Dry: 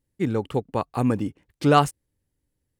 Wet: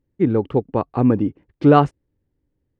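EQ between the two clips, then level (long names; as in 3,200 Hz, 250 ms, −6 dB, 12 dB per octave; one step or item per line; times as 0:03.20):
head-to-tape spacing loss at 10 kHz 33 dB
parametric band 340 Hz +4.5 dB 0.99 octaves
+5.0 dB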